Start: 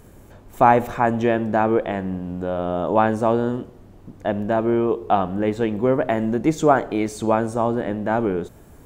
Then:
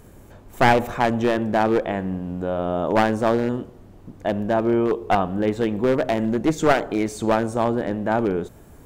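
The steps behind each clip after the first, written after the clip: one-sided wavefolder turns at -14 dBFS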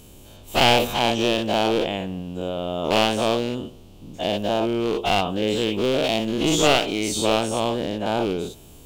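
every event in the spectrogram widened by 120 ms; resonant high shelf 2.3 kHz +8 dB, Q 3; trim -5.5 dB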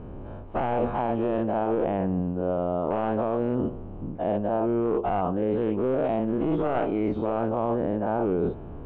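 low-pass 1.5 kHz 24 dB/octave; peak limiter -14.5 dBFS, peak gain reduction 8.5 dB; reverse; compression 6:1, threshold -31 dBFS, peak gain reduction 11.5 dB; reverse; trim +8.5 dB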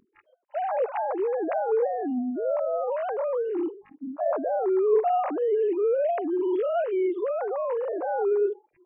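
formants replaced by sine waves; spectral noise reduction 28 dB

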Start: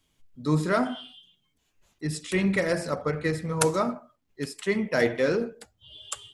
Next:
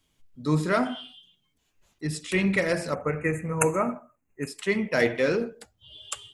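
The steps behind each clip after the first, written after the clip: spectral selection erased 2.94–4.48 s, 2.8–6.1 kHz; dynamic bell 2.5 kHz, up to +5 dB, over -46 dBFS, Q 2.3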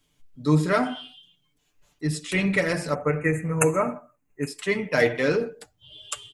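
comb 6.8 ms, depth 49%; trim +1 dB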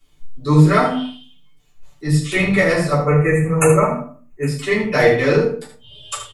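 on a send: delay 75 ms -9 dB; on the sum: simulated room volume 130 m³, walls furnished, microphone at 3.3 m; trim -1 dB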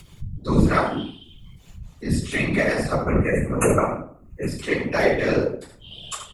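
upward compressor, threshold -25 dBFS; whisper effect; trim -5.5 dB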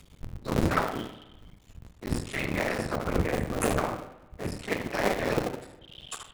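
cycle switcher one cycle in 2, muted; spring tank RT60 1.1 s, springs 40/52 ms, chirp 55 ms, DRR 12.5 dB; trim -5 dB

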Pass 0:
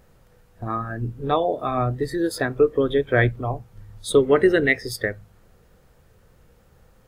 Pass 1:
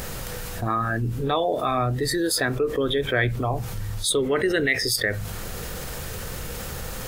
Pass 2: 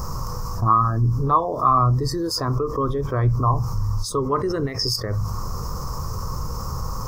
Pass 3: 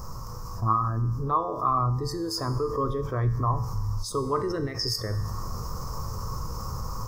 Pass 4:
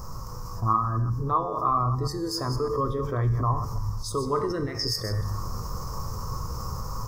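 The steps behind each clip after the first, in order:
treble shelf 2 kHz +11.5 dB; level flattener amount 70%; trim -9 dB
FFT filter 130 Hz 0 dB, 220 Hz -7 dB, 740 Hz -11 dB, 1.1 kHz +9 dB, 1.6 kHz -22 dB, 2.5 kHz -27 dB, 3.6 kHz -30 dB, 5.3 kHz -1 dB, 9.3 kHz -20 dB, 15 kHz -12 dB; trim +7.5 dB
level rider gain up to 4.5 dB; feedback comb 110 Hz, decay 1.2 s, harmonics all, mix 70%
chunks repeated in reverse 122 ms, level -9 dB

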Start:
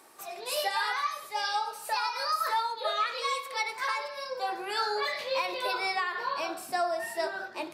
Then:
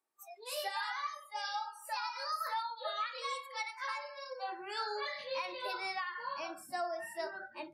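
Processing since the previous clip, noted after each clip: spectral noise reduction 25 dB; trim -8 dB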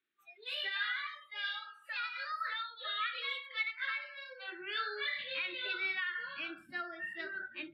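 FFT filter 330 Hz 0 dB, 930 Hz -24 dB, 1.4 kHz +3 dB, 3.6 kHz +6 dB, 5.7 kHz -25 dB; trim +2 dB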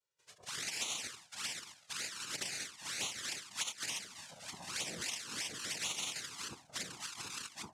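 noise-vocoded speech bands 2; touch-sensitive flanger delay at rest 2.1 ms, full sweep at -32 dBFS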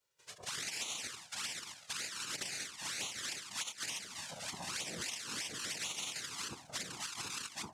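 compression 3:1, threshold -48 dBFS, peak gain reduction 11.5 dB; trim +7.5 dB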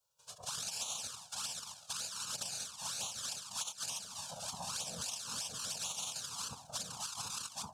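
static phaser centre 830 Hz, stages 4; trim +3 dB

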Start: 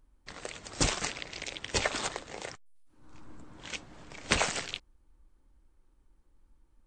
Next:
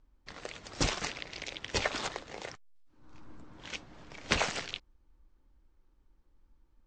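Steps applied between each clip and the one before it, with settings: low-pass 6.4 kHz 24 dB/octave; trim -1.5 dB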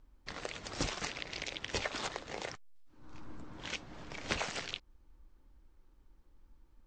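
compression 2.5:1, threshold -40 dBFS, peak gain reduction 12 dB; trim +3.5 dB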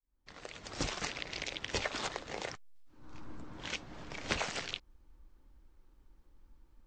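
fade-in on the opening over 0.98 s; trim +1 dB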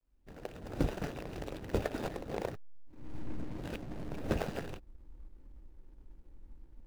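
median filter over 41 samples; trim +8 dB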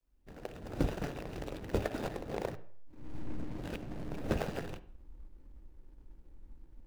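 reverberation RT60 0.55 s, pre-delay 43 ms, DRR 15.5 dB

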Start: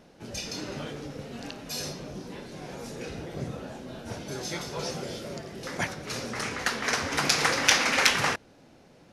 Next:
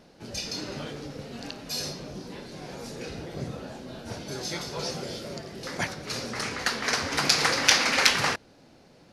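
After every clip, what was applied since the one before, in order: peaking EQ 4.5 kHz +5.5 dB 0.4 oct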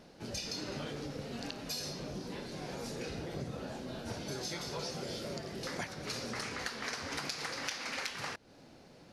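compression 12:1, threshold -34 dBFS, peak gain reduction 20.5 dB; trim -1.5 dB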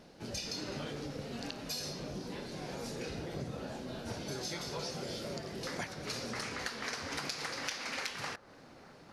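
feedback echo behind a band-pass 851 ms, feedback 67%, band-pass 720 Hz, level -17.5 dB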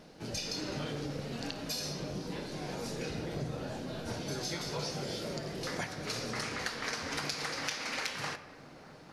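simulated room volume 1300 m³, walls mixed, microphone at 0.53 m; trim +2 dB

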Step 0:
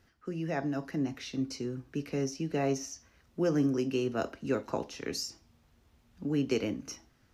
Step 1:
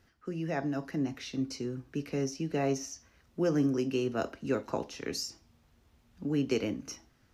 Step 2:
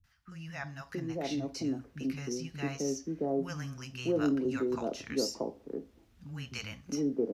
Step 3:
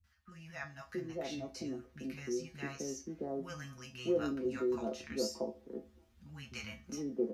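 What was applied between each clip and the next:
no audible change
three bands offset in time lows, highs, mids 40/670 ms, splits 160/850 Hz
feedback comb 73 Hz, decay 0.19 s, harmonics odd, mix 90%; trim +4.5 dB

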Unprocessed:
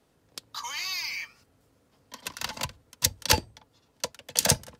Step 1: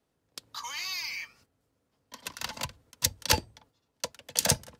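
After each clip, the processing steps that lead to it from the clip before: gate -59 dBFS, range -8 dB; trim -2.5 dB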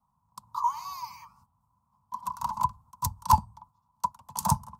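FFT filter 210 Hz 0 dB, 300 Hz -23 dB, 420 Hz -29 dB, 630 Hz -16 dB, 1 kHz +15 dB, 1.7 kHz -25 dB, 3.2 kHz -23 dB, 7.7 kHz -11 dB, 15 kHz -7 dB; trim +4.5 dB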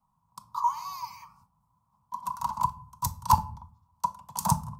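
simulated room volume 460 m³, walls furnished, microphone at 0.59 m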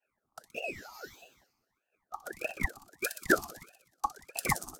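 harmonic-percussive split harmonic -14 dB; feedback echo behind a high-pass 62 ms, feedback 66%, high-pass 2.3 kHz, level -7 dB; ring modulator with a swept carrier 900 Hz, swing 85%, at 1.6 Hz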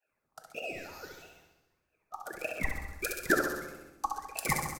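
on a send: feedback delay 69 ms, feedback 58%, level -6 dB; on the sum: simulated room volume 520 m³, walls mixed, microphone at 0.52 m; trim -1.5 dB

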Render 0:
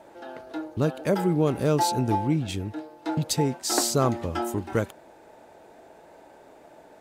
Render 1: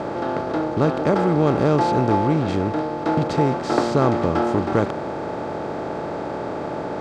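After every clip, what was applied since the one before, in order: spectral levelling over time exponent 0.4; low-pass 2.4 kHz 12 dB/octave; trim +1 dB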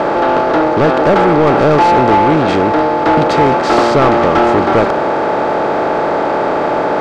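overdrive pedal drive 21 dB, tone 2.3 kHz, clips at -5 dBFS; trim +4 dB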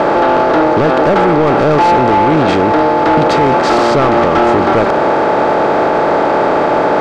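peak limiter -7 dBFS, peak gain reduction 5.5 dB; trim +3 dB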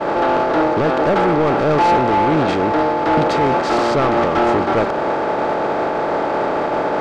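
expander -4 dBFS; in parallel at -11.5 dB: saturation -22 dBFS, distortion -9 dB

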